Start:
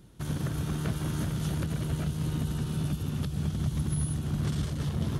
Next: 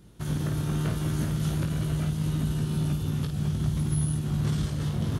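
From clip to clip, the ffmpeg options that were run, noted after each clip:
-af "aecho=1:1:19|53:0.531|0.447"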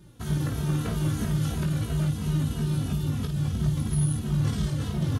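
-filter_complex "[0:a]asplit=2[s0][s1];[s1]adelay=2.8,afreqshift=-3[s2];[s0][s2]amix=inputs=2:normalize=1,volume=1.58"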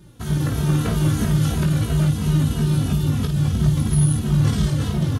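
-af "dynaudnorm=f=290:g=3:m=1.41,volume=1.68"

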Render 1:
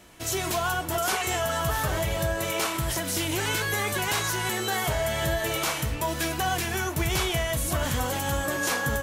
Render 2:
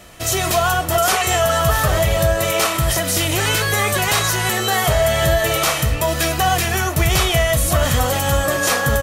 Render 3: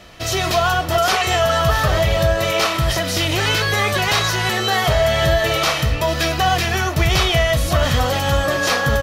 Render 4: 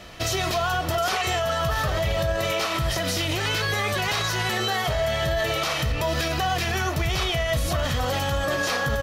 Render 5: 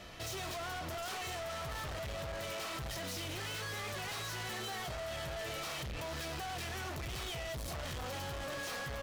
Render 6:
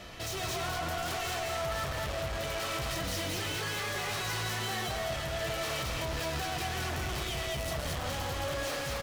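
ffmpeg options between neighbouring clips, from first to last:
-af "aecho=1:1:1.6:0.37,volume=2.82"
-af "highshelf=f=6400:t=q:w=1.5:g=-8.5"
-af "alimiter=limit=0.158:level=0:latency=1:release=106"
-af "asoftclip=type=hard:threshold=0.0251,volume=0.422"
-af "aecho=1:1:128.3|218.7:0.282|0.794,volume=1.58"

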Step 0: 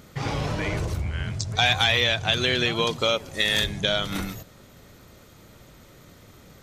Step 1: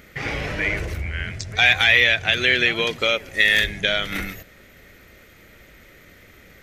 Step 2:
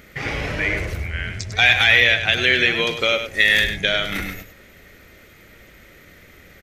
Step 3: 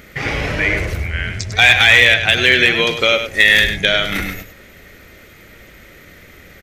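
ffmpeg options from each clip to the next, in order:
-af "equalizer=f=125:t=o:w=1:g=-9,equalizer=f=250:t=o:w=1:g=-3,equalizer=f=1000:t=o:w=1:g=-10,equalizer=f=2000:t=o:w=1:g=11,equalizer=f=4000:t=o:w=1:g=-5,equalizer=f=8000:t=o:w=1:g=-6,volume=1.5"
-af "aecho=1:1:100:0.355,volume=1.12"
-af "volume=2.11,asoftclip=hard,volume=0.473,volume=1.78"

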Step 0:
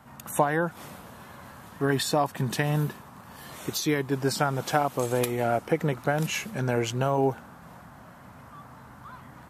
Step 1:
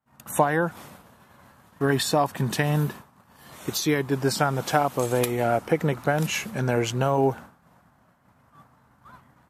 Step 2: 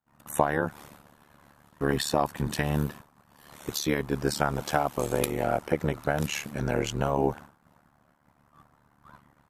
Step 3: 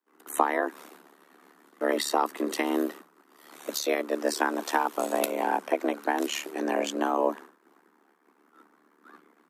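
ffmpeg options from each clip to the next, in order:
-af "agate=range=0.0224:threshold=0.0141:ratio=3:detection=peak,volume=1.33"
-af "tremolo=f=73:d=0.947"
-af "afreqshift=170"

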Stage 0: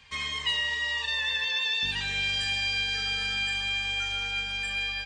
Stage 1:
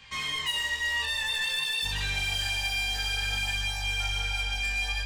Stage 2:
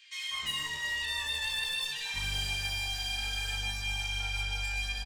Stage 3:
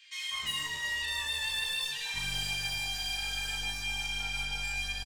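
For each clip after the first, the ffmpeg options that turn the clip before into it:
-af "asubboost=boost=4.5:cutoff=100,asoftclip=type=tanh:threshold=0.0282,flanger=delay=19:depth=5.3:speed=0.53,volume=2.24"
-filter_complex "[0:a]acrossover=split=560|1800[s0][s1][s2];[s1]adelay=200[s3];[s0]adelay=310[s4];[s4][s3][s2]amix=inputs=3:normalize=0,volume=0.708"
-filter_complex "[0:a]acrossover=split=480|5400[s0][s1][s2];[s0]aeval=exprs='clip(val(0),-1,0.00316)':c=same[s3];[s2]asplit=2[s4][s5];[s5]adelay=36,volume=0.75[s6];[s4][s6]amix=inputs=2:normalize=0[s7];[s3][s1][s7]amix=inputs=3:normalize=0"

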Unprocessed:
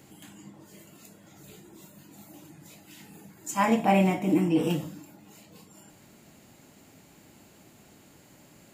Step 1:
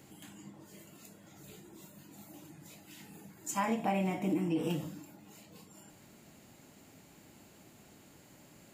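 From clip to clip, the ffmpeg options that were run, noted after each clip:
-af "acompressor=threshold=0.0501:ratio=4,volume=0.708"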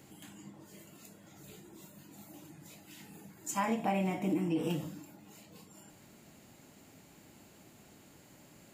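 -af anull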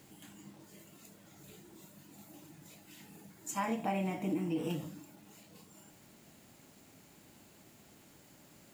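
-af "acrusher=bits=9:mix=0:aa=0.000001,volume=0.75"

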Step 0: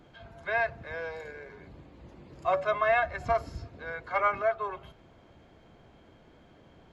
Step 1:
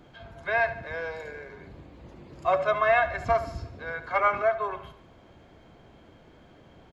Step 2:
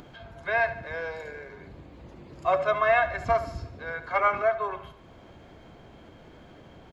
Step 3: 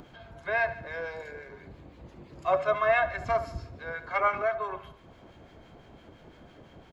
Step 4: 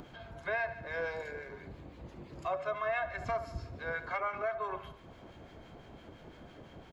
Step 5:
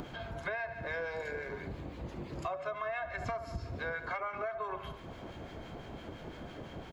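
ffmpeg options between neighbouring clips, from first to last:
-af "aecho=1:1:72|144|216|288|360:0.211|0.104|0.0507|0.0249|0.0122,volume=1.41"
-af "acompressor=mode=upward:threshold=0.00708:ratio=2.5"
-filter_complex "[0:a]acrossover=split=1300[s0][s1];[s0]aeval=exprs='val(0)*(1-0.5/2+0.5/2*cos(2*PI*5.9*n/s))':c=same[s2];[s1]aeval=exprs='val(0)*(1-0.5/2-0.5/2*cos(2*PI*5.9*n/s))':c=same[s3];[s2][s3]amix=inputs=2:normalize=0"
-af "alimiter=level_in=1.12:limit=0.0631:level=0:latency=1:release=382,volume=0.891"
-af "acompressor=threshold=0.00891:ratio=6,volume=2.11"

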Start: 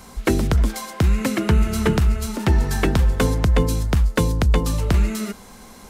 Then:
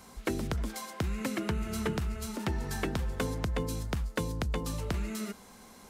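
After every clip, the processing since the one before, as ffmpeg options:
-af "lowshelf=f=65:g=-9.5,acompressor=threshold=0.0891:ratio=2,volume=0.355"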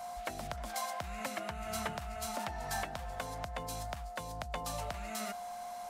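-af "aeval=exprs='val(0)+0.00355*sin(2*PI*710*n/s)':c=same,lowshelf=f=510:t=q:w=3:g=-8.5,alimiter=level_in=1.26:limit=0.0631:level=0:latency=1:release=313,volume=0.794,volume=1.19"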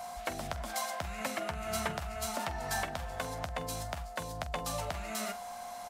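-af "aecho=1:1:12|46:0.266|0.2,volume=1.41"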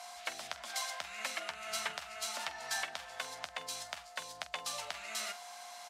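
-af "bandpass=f=3800:t=q:w=0.66:csg=0,volume=1.41"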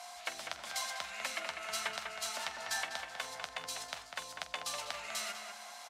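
-filter_complex "[0:a]asplit=2[s0][s1];[s1]adelay=198,lowpass=f=2700:p=1,volume=0.562,asplit=2[s2][s3];[s3]adelay=198,lowpass=f=2700:p=1,volume=0.41,asplit=2[s4][s5];[s5]adelay=198,lowpass=f=2700:p=1,volume=0.41,asplit=2[s6][s7];[s7]adelay=198,lowpass=f=2700:p=1,volume=0.41,asplit=2[s8][s9];[s9]adelay=198,lowpass=f=2700:p=1,volume=0.41[s10];[s0][s2][s4][s6][s8][s10]amix=inputs=6:normalize=0"

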